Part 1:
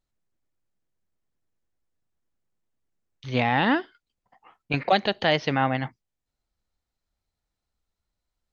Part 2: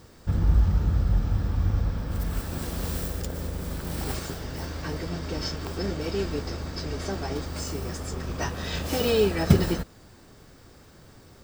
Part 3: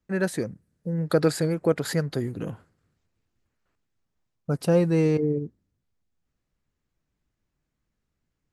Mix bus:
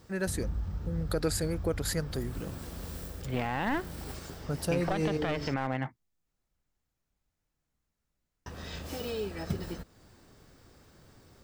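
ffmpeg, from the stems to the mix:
-filter_complex "[0:a]lowpass=2.3k,aeval=exprs='clip(val(0),-1,0.0398)':c=same,volume=-2.5dB[a];[1:a]acompressor=threshold=-37dB:ratio=1.5,volume=-6.5dB,asplit=3[b][c][d];[b]atrim=end=5.54,asetpts=PTS-STARTPTS,afade=t=out:st=5.536:d=0.004:c=hsin[e];[c]atrim=start=5.54:end=8.46,asetpts=PTS-STARTPTS,volume=0[f];[d]atrim=start=8.46,asetpts=PTS-STARTPTS,afade=t=in:d=0.004:c=hsin[g];[e][f][g]concat=n=3:v=0:a=1[h];[2:a]highshelf=f=3.8k:g=10,volume=-7.5dB[i];[a][h][i]amix=inputs=3:normalize=0,alimiter=limit=-19dB:level=0:latency=1:release=70"

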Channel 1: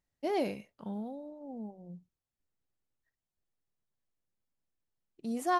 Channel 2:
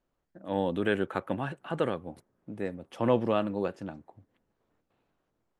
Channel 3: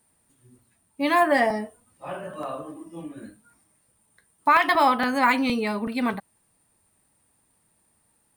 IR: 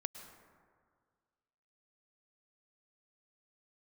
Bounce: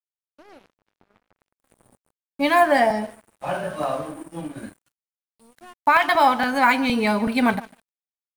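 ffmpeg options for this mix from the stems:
-filter_complex "[0:a]adelay=150,volume=-7dB,asplit=2[a][b];[b]volume=-6.5dB[c];[1:a]acrossover=split=280|2100[d][e][f];[d]acompressor=threshold=-37dB:ratio=4[g];[e]acompressor=threshold=-33dB:ratio=4[h];[f]acompressor=threshold=-58dB:ratio=4[i];[g][h][i]amix=inputs=3:normalize=0,aeval=exprs='sgn(val(0))*max(abs(val(0))-0.00316,0)':c=same,volume=-13.5dB,asplit=2[j][k];[k]volume=-20dB[l];[2:a]aecho=1:1:1.3:0.33,dynaudnorm=f=110:g=3:m=13dB,adelay=1400,volume=-5dB,asplit=2[m][n];[n]volume=-18.5dB[o];[a][j]amix=inputs=2:normalize=0,acompressor=threshold=-47dB:ratio=4,volume=0dB[p];[3:a]atrim=start_sample=2205[q];[c][q]afir=irnorm=-1:irlink=0[r];[l][o]amix=inputs=2:normalize=0,aecho=0:1:150|300|450|600:1|0.3|0.09|0.027[s];[m][p][r][s]amix=inputs=4:normalize=0,aeval=exprs='sgn(val(0))*max(abs(val(0))-0.00794,0)':c=same"

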